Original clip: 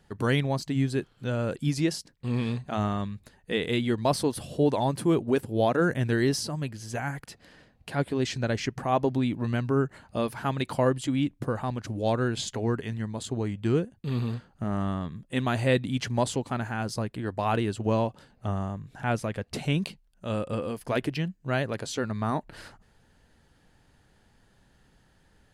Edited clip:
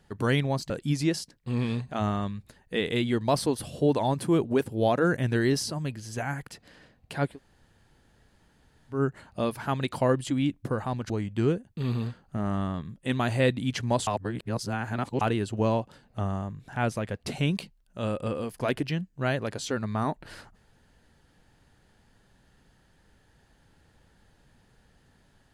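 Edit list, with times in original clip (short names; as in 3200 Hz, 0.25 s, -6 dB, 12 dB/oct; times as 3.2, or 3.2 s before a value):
0.7–1.47 cut
8.08–9.73 room tone, crossfade 0.16 s
11.87–13.37 cut
16.34–17.48 reverse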